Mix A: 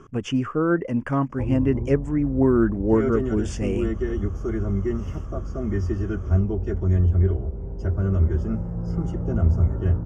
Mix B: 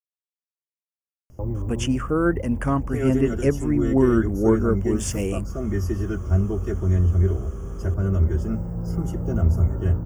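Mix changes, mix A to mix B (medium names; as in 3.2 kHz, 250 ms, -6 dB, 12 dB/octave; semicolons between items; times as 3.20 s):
speech: entry +1.55 s; master: remove distance through air 120 m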